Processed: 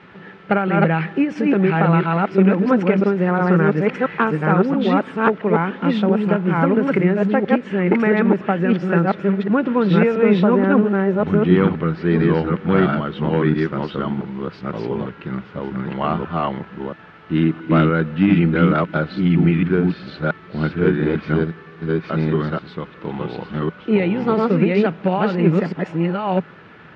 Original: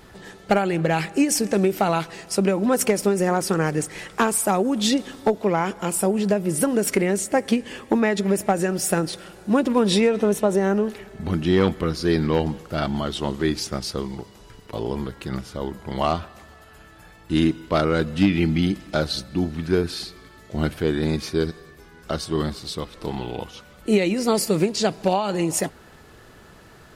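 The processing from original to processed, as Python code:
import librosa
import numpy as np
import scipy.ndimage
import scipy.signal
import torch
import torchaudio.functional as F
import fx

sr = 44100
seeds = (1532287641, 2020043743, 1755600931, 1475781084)

p1 = fx.reverse_delay(x, sr, ms=677, wet_db=0)
p2 = fx.quant_dither(p1, sr, seeds[0], bits=6, dither='triangular')
p3 = p1 + (p2 * 10.0 ** (-3.5 / 20.0))
p4 = fx.cabinet(p3, sr, low_hz=130.0, low_slope=12, high_hz=2700.0, hz=(170.0, 680.0, 1400.0), db=(8, -4, 5))
y = p4 * 10.0 ** (-3.5 / 20.0)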